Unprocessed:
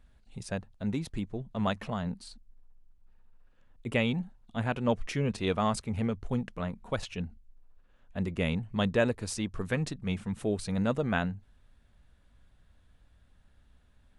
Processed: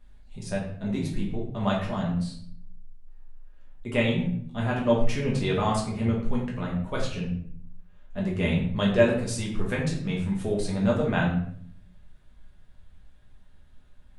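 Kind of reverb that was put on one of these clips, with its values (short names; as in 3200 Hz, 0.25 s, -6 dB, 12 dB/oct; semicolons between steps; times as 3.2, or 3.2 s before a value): shoebox room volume 100 m³, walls mixed, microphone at 1.3 m; gain -1.5 dB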